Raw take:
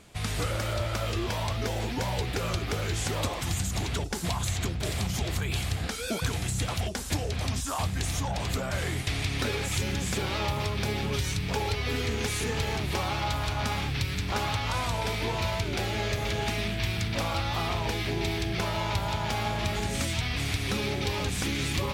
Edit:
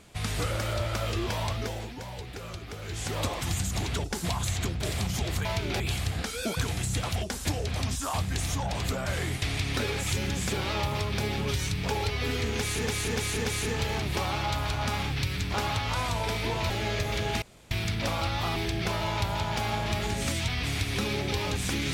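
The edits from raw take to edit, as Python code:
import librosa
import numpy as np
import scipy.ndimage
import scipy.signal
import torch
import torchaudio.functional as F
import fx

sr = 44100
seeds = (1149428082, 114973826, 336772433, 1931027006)

y = fx.edit(x, sr, fx.fade_down_up(start_s=1.48, length_s=1.78, db=-9.5, fade_s=0.46),
    fx.repeat(start_s=12.23, length_s=0.29, count=4),
    fx.move(start_s=15.48, length_s=0.35, to_s=5.45),
    fx.room_tone_fill(start_s=16.55, length_s=0.29),
    fx.cut(start_s=17.69, length_s=0.6), tone=tone)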